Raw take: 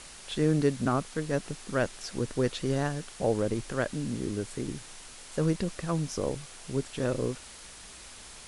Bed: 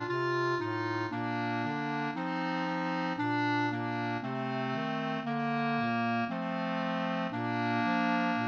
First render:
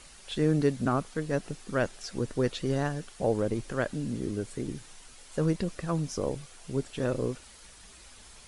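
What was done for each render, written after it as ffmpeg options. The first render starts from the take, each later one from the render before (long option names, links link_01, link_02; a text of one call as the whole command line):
ffmpeg -i in.wav -af "afftdn=noise_reduction=7:noise_floor=-48" out.wav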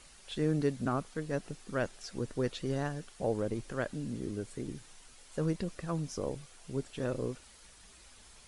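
ffmpeg -i in.wav -af "volume=-5dB" out.wav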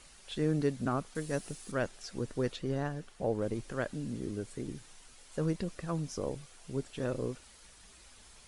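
ffmpeg -i in.wav -filter_complex "[0:a]asettb=1/sr,asplit=3[link_01][link_02][link_03];[link_01]atrim=end=1.154[link_04];[link_02]atrim=start=1.15:end=1.72,asetpts=PTS-STARTPTS,afade=type=in:duration=0.004:curve=qsin,afade=type=out:start_time=0.566:duration=0.004:curve=qsin,aemphasis=mode=production:type=50kf[link_05];[link_03]atrim=start=1.716[link_06];[link_04][link_05]acrossfade=duration=0.004:curve1=hsin:curve2=qsin[link_07];[link_07][link_06]acrossfade=duration=0.004:curve1=qsin:curve2=hsin,asettb=1/sr,asplit=3[link_08][link_09][link_10];[link_08]atrim=end=2.564[link_11];[link_09]atrim=start=2.56:end=3.42,asetpts=PTS-STARTPTS,afade=type=in:duration=0.004:curve=qsin,afade=type=out:start_time=0.856:duration=0.004:curve=qsin,highshelf=frequency=3500:gain=-7[link_12];[link_10]atrim=start=3.416[link_13];[link_11][link_12]acrossfade=duration=0.004:curve1=hsin:curve2=qsin[link_14];[link_14][link_13]acrossfade=duration=0.004:curve1=qsin:curve2=hsin" out.wav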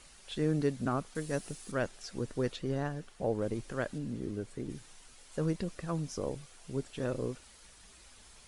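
ffmpeg -i in.wav -filter_complex "[0:a]asettb=1/sr,asplit=3[link_01][link_02][link_03];[link_01]atrim=end=3.984[link_04];[link_02]atrim=start=3.98:end=4.7,asetpts=PTS-STARTPTS,afade=type=in:duration=0.004:curve=qsin,afade=type=out:start_time=0.716:duration=0.004:curve=qsin,highshelf=frequency=3800:gain=-6.5[link_05];[link_03]atrim=start=4.696[link_06];[link_04][link_05]acrossfade=duration=0.004:curve1=hsin:curve2=qsin[link_07];[link_07][link_06]acrossfade=duration=0.004:curve1=qsin:curve2=hsin" out.wav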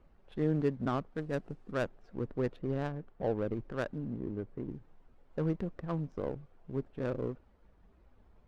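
ffmpeg -i in.wav -af "adynamicsmooth=sensitivity=4.5:basefreq=720" out.wav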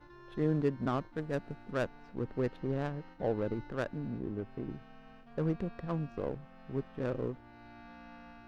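ffmpeg -i in.wav -i bed.wav -filter_complex "[1:a]volume=-23dB[link_01];[0:a][link_01]amix=inputs=2:normalize=0" out.wav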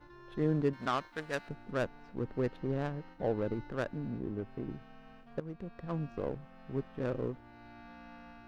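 ffmpeg -i in.wav -filter_complex "[0:a]asettb=1/sr,asplit=3[link_01][link_02][link_03];[link_01]atrim=end=0.734[link_04];[link_02]atrim=start=0.73:end=1.49,asetpts=PTS-STARTPTS,afade=type=in:duration=0.004:curve=qsin,afade=type=out:start_time=0.756:duration=0.004:curve=qsin,tiltshelf=frequency=650:gain=-9.5[link_05];[link_03]atrim=start=1.486[link_06];[link_04][link_05]acrossfade=duration=0.004:curve1=hsin:curve2=qsin[link_07];[link_07][link_06]acrossfade=duration=0.004:curve1=qsin:curve2=hsin,asplit=2[link_08][link_09];[link_08]atrim=end=5.4,asetpts=PTS-STARTPTS,afade=type=out:start_time=5.396:duration=0.004:curve=hsin:silence=0.141254[link_10];[link_09]atrim=start=5.4,asetpts=PTS-STARTPTS,afade=type=in:duration=0.66:silence=0.141254[link_11];[link_10][link_11]concat=n=2:v=0:a=1" out.wav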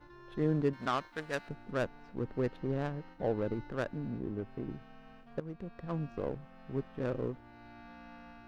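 ffmpeg -i in.wav -af anull out.wav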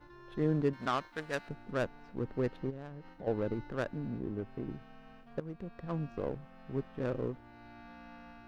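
ffmpeg -i in.wav -filter_complex "[0:a]asplit=3[link_01][link_02][link_03];[link_01]afade=type=out:start_time=2.69:duration=0.02[link_04];[link_02]acompressor=threshold=-45dB:ratio=2.5:attack=3.2:release=140:knee=1:detection=peak,afade=type=in:start_time=2.69:duration=0.02,afade=type=out:start_time=3.26:duration=0.02[link_05];[link_03]afade=type=in:start_time=3.26:duration=0.02[link_06];[link_04][link_05][link_06]amix=inputs=3:normalize=0" out.wav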